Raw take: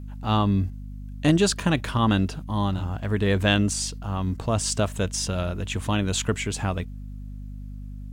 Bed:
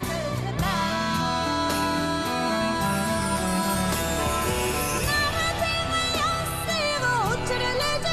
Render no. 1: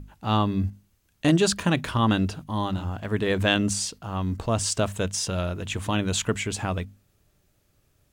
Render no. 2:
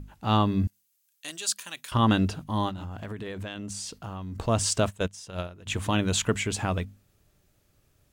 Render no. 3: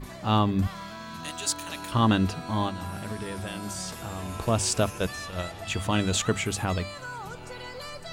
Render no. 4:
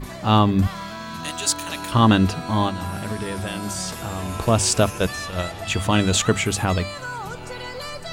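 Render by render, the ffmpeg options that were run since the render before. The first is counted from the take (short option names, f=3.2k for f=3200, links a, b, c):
-af "bandreject=f=50:t=h:w=6,bandreject=f=100:t=h:w=6,bandreject=f=150:t=h:w=6,bandreject=f=200:t=h:w=6,bandreject=f=250:t=h:w=6"
-filter_complex "[0:a]asettb=1/sr,asplit=3[a][b][c];[a]atrim=end=0.674[d];[b]atrim=start=0.67:end=1.92,asetpts=PTS-STARTPTS,afade=t=in:d=0.004:c=qsin,afade=t=out:st=1.246:d=0.004:c=qsin,aderivative[e];[c]atrim=start=1.916[f];[d][e]acrossfade=d=0.004:c1=hsin:c2=qsin[g];[g][f]acrossfade=d=0.004:c1=qsin:c2=hsin,asettb=1/sr,asplit=3[h][i][j];[h]atrim=end=2.694[k];[i]atrim=start=2.69:end=4.36,asetpts=PTS-STARTPTS,afade=t=in:d=0.004:c=qsin,afade=t=out:st=1.666:d=0.004:c=qsin,acompressor=threshold=-32dB:ratio=12:attack=3.2:release=140:knee=1:detection=peak[l];[j]atrim=start=4.356[m];[k][l]acrossfade=d=0.004:c1=hsin:c2=qsin[n];[n][m]acrossfade=d=0.004:c1=qsin:c2=hsin,asplit=3[o][p][q];[o]afade=t=out:st=4.89:d=0.02[r];[p]agate=range=-16dB:threshold=-26dB:ratio=16:release=100:detection=peak,afade=t=in:st=4.89:d=0.02,afade=t=out:st=5.66:d=0.02[s];[q]afade=t=in:st=5.66:d=0.02[t];[r][s][t]amix=inputs=3:normalize=0"
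-filter_complex "[1:a]volume=-14.5dB[a];[0:a][a]amix=inputs=2:normalize=0"
-af "volume=6.5dB"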